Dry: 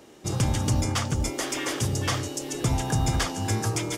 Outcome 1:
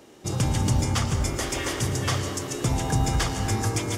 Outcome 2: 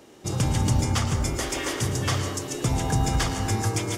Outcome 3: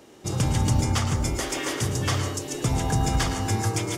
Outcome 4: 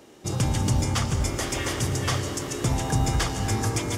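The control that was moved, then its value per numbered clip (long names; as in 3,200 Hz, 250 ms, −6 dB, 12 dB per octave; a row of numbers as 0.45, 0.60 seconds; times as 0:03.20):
dense smooth reverb, RT60: 2.4, 1.1, 0.53, 5.3 seconds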